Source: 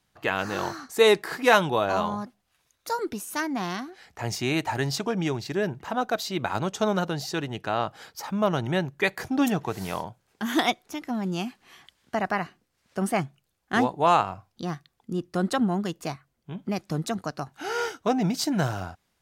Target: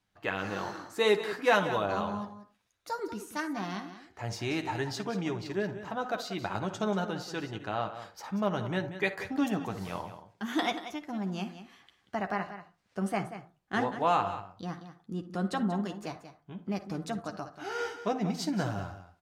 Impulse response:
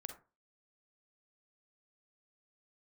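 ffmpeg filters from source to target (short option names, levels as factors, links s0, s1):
-filter_complex "[0:a]highshelf=f=8700:g=-10.5,aecho=1:1:185:0.251,asplit=2[s0][s1];[1:a]atrim=start_sample=2205,adelay=10[s2];[s1][s2]afir=irnorm=-1:irlink=0,volume=0.794[s3];[s0][s3]amix=inputs=2:normalize=0,volume=0.447"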